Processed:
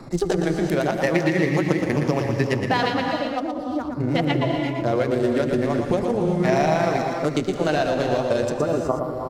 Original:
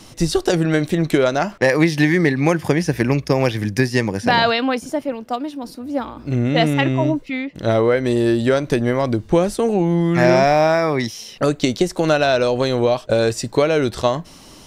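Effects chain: local Wiener filter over 15 samples; spectral replace 13.54–14.14 s, 1.4–10 kHz after; granular stretch 0.66×, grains 81 ms; vibrato 8.4 Hz 6.1 cents; on a send: delay 121 ms -6.5 dB; on the sum: gated-style reverb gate 410 ms rising, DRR 5.5 dB; speed mistake 24 fps film run at 25 fps; three bands compressed up and down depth 40%; trim -4.5 dB

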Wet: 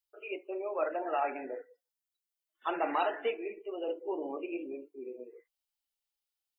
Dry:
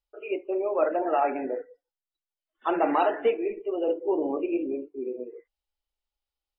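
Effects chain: tilt EQ +3 dB/octave; trim -6 dB

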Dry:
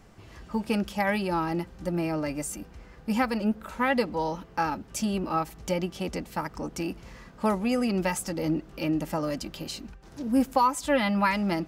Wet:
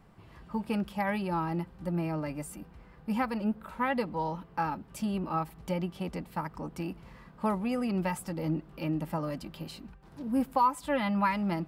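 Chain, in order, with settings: fifteen-band graphic EQ 160 Hz +7 dB, 1 kHz +5 dB, 6.3 kHz -10 dB; trim -6.5 dB

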